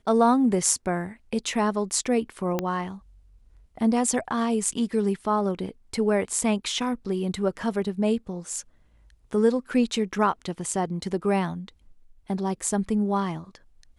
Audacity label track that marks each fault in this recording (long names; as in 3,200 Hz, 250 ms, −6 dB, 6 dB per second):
2.590000	2.590000	click −12 dBFS